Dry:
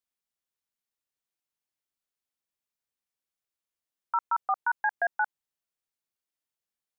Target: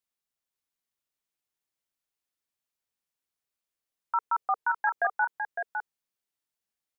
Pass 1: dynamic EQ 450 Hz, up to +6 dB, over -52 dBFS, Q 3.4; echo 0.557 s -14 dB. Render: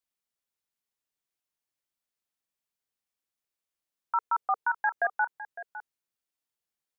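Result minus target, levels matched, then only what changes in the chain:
echo-to-direct -8 dB
change: echo 0.557 s -6 dB

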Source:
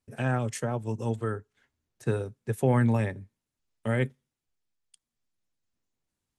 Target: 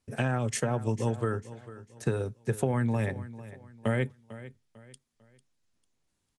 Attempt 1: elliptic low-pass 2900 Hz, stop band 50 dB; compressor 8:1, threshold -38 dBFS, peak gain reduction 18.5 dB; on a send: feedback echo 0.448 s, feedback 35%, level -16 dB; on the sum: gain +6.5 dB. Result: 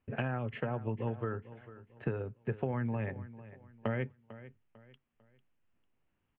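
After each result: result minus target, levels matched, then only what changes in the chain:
compressor: peak gain reduction +7 dB; 4000 Hz band -3.5 dB
change: compressor 8:1, threshold -30.5 dBFS, peak gain reduction 12 dB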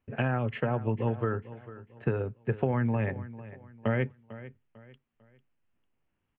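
4000 Hz band -5.5 dB
change: elliptic low-pass 11000 Hz, stop band 50 dB

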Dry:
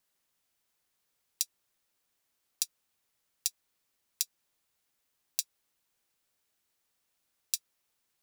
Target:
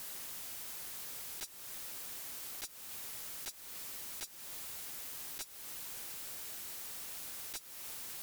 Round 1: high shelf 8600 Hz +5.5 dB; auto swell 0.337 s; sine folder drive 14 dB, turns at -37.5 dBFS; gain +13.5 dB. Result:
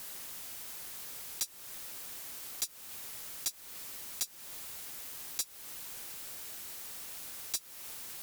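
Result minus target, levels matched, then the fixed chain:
sine folder: distortion -8 dB
high shelf 8600 Hz +5.5 dB; auto swell 0.337 s; sine folder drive 14 dB, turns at -48.5 dBFS; gain +13.5 dB

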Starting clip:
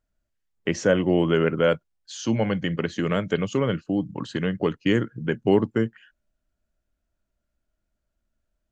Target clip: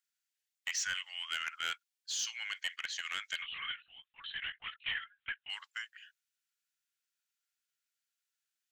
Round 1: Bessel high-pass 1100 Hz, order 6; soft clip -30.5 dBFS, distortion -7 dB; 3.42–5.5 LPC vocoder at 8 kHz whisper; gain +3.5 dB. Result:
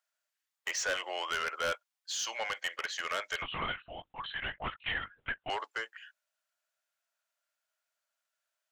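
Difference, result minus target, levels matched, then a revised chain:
1000 Hz band +8.0 dB
Bessel high-pass 2500 Hz, order 6; soft clip -30.5 dBFS, distortion -11 dB; 3.42–5.5 LPC vocoder at 8 kHz whisper; gain +3.5 dB

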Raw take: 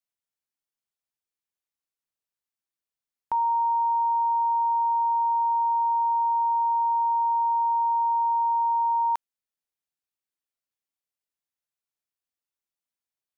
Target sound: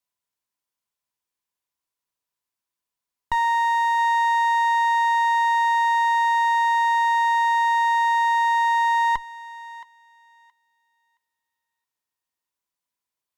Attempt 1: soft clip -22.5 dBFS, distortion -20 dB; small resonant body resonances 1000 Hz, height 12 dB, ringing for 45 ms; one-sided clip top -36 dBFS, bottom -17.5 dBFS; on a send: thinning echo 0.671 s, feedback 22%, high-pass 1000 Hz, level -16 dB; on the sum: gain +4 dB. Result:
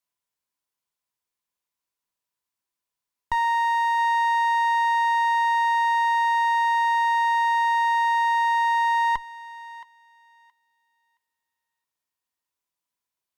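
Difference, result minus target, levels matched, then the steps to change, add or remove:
soft clip: distortion +10 dB
change: soft clip -16.5 dBFS, distortion -30 dB

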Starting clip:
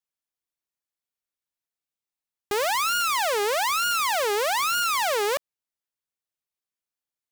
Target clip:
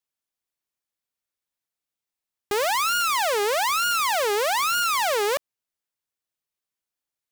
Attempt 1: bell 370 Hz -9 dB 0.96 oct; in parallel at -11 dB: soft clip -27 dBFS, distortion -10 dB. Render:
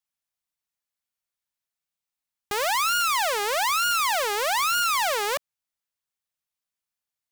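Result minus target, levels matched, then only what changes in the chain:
500 Hz band -4.0 dB
remove: bell 370 Hz -9 dB 0.96 oct

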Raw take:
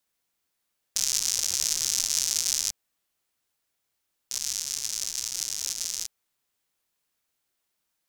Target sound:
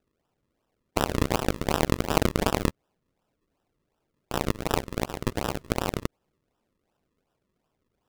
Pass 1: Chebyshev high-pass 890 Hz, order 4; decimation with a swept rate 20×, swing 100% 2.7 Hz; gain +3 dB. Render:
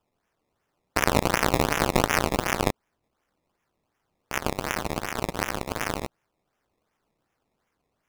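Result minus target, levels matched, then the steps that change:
decimation with a swept rate: distortion -7 dB
change: decimation with a swept rate 40×, swing 100% 2.7 Hz

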